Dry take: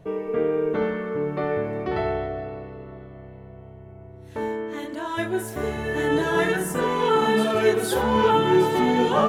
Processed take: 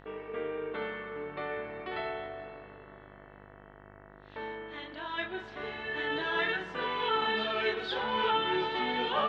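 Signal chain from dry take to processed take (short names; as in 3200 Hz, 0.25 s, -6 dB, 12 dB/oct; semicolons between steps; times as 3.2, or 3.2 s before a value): steep low-pass 3800 Hz 36 dB/oct; tilt +4.5 dB/oct; buzz 50 Hz, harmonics 39, -46 dBFS -2 dB/oct; gain -8 dB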